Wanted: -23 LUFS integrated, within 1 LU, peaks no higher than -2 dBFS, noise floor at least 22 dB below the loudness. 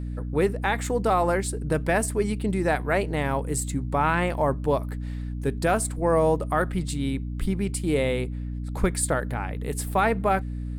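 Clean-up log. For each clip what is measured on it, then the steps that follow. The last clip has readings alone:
hum 60 Hz; highest harmonic 300 Hz; hum level -29 dBFS; loudness -25.5 LUFS; peak level -10.5 dBFS; loudness target -23.0 LUFS
-> de-hum 60 Hz, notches 5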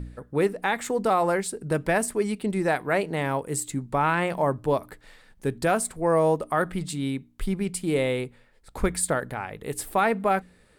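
hum not found; loudness -26.0 LUFS; peak level -11.0 dBFS; loudness target -23.0 LUFS
-> trim +3 dB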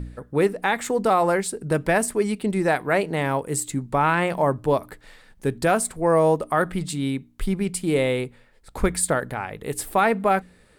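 loudness -23.0 LUFS; peak level -8.0 dBFS; noise floor -56 dBFS

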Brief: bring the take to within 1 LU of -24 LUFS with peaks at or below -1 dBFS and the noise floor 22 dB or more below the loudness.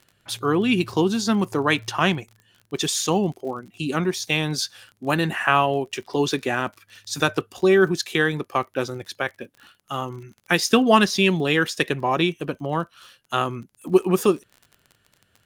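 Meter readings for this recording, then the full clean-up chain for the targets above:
tick rate 34 per s; loudness -22.5 LUFS; peak level -2.0 dBFS; loudness target -24.0 LUFS
-> de-click; trim -1.5 dB

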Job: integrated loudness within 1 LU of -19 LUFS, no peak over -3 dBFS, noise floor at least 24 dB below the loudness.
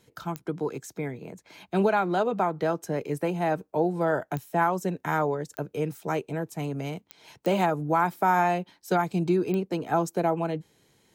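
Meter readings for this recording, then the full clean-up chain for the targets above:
clicks found 6; loudness -27.5 LUFS; peak level -12.5 dBFS; loudness target -19.0 LUFS
-> de-click; trim +8.5 dB

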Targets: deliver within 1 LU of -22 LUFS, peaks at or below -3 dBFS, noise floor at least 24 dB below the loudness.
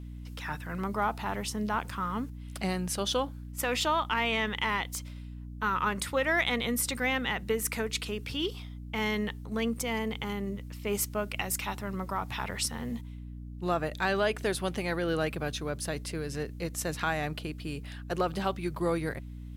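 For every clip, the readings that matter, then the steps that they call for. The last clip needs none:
hum 60 Hz; highest harmonic 300 Hz; hum level -39 dBFS; loudness -31.5 LUFS; peak level -15.5 dBFS; loudness target -22.0 LUFS
-> de-hum 60 Hz, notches 5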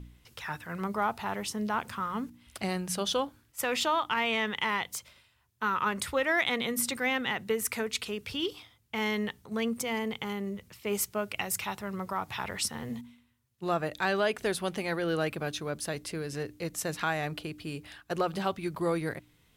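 hum not found; loudness -32.0 LUFS; peak level -15.5 dBFS; loudness target -22.0 LUFS
-> trim +10 dB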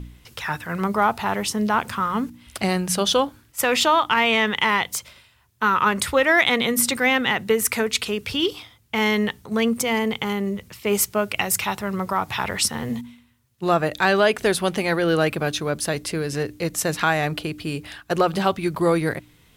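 loudness -22.0 LUFS; peak level -5.5 dBFS; noise floor -57 dBFS

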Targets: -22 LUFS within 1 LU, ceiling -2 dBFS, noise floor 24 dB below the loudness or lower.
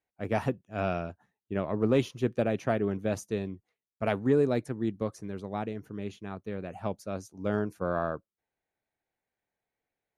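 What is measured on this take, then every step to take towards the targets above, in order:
loudness -31.5 LUFS; peak level -13.5 dBFS; loudness target -22.0 LUFS
-> trim +9.5 dB

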